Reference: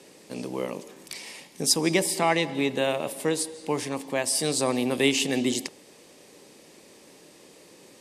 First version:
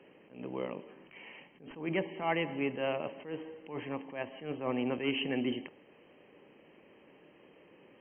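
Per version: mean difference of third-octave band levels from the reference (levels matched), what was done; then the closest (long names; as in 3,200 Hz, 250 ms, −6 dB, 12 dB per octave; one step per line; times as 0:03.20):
9.5 dB: soft clipping −13 dBFS, distortion −20 dB
linear-phase brick-wall low-pass 3,200 Hz
level that may rise only so fast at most 130 dB per second
level −6 dB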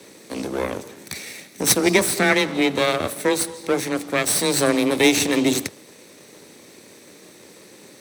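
4.0 dB: lower of the sound and its delayed copy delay 0.5 ms
high-pass filter 70 Hz 24 dB per octave
frequency shifter +17 Hz
level +7 dB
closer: second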